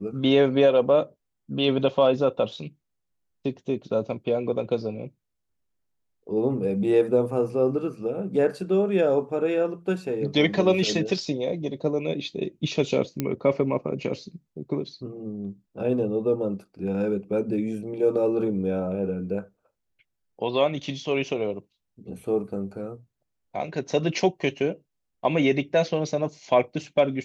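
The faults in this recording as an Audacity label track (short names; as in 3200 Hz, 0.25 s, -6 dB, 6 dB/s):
13.200000	13.200000	pop -12 dBFS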